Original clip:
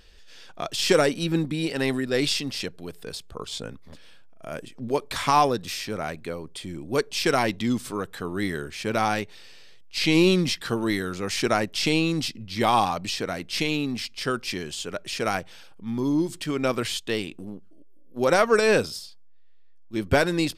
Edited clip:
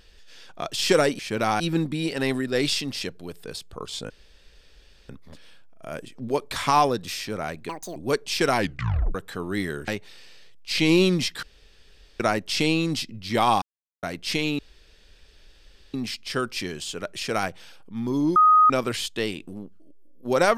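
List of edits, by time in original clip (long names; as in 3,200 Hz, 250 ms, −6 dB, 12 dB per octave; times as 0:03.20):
0:03.69: splice in room tone 0.99 s
0:06.29–0:06.81: play speed 194%
0:07.43: tape stop 0.57 s
0:08.73–0:09.14: move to 0:01.19
0:10.69–0:11.46: fill with room tone
0:12.88–0:13.29: silence
0:13.85: splice in room tone 1.35 s
0:16.27–0:16.61: beep over 1,250 Hz −12 dBFS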